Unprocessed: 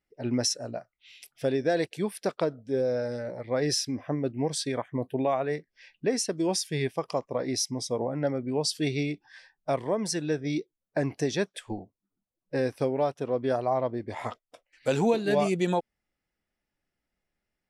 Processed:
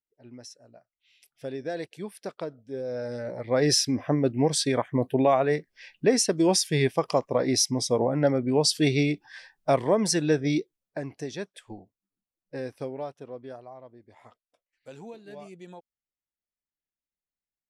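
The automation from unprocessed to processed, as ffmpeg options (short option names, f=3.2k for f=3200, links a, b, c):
-af "volume=5.5dB,afade=t=in:st=0.7:d=0.96:silence=0.266073,afade=t=in:st=2.83:d=0.92:silence=0.237137,afade=t=out:st=10.44:d=0.57:silence=0.237137,afade=t=out:st=12.85:d=0.88:silence=0.251189"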